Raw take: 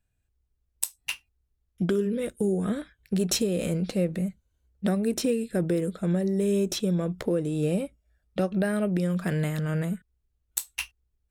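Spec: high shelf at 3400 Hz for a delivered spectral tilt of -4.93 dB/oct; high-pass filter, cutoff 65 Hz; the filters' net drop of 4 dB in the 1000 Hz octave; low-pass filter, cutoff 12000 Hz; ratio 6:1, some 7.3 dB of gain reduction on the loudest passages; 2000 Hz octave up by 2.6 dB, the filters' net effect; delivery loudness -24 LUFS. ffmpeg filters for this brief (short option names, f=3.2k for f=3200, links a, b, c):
-af "highpass=65,lowpass=12k,equalizer=f=1k:t=o:g=-8,equalizer=f=2k:t=o:g=3.5,highshelf=f=3.4k:g=6.5,acompressor=threshold=-27dB:ratio=6,volume=8dB"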